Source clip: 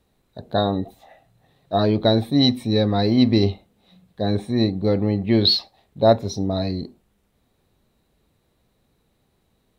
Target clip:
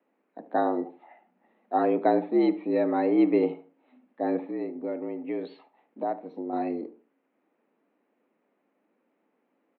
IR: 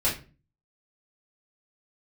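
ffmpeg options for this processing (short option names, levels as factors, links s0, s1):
-filter_complex "[0:a]asettb=1/sr,asplit=3[s0][s1][s2];[s0]atrim=end=4.484[s3];[s1]atrim=start=4.48:end=6.53,asetpts=PTS-STARTPTS,afade=t=in:d=0.004:c=qsin,afade=t=out:st=2.046:d=0.004:c=qsin,acompressor=threshold=0.0398:ratio=2.5[s4];[s2]atrim=start=6.526[s5];[s3][s4]acrossfade=d=0.004:c1=hsin:c2=qsin[s6];[s6][s5]acrossfade=d=0.004:c1=qsin:c2=hsin,asplit=2[s7][s8];[s8]adelay=73,lowpass=f=1900:p=1,volume=0.168,asplit=2[s9][s10];[s10]adelay=73,lowpass=f=1900:p=1,volume=0.3,asplit=2[s11][s12];[s12]adelay=73,lowpass=f=1900:p=1,volume=0.3[s13];[s7][s9][s11][s13]amix=inputs=4:normalize=0,highpass=f=160:t=q:w=0.5412,highpass=f=160:t=q:w=1.307,lowpass=f=2500:t=q:w=0.5176,lowpass=f=2500:t=q:w=0.7071,lowpass=f=2500:t=q:w=1.932,afreqshift=70,volume=0.631"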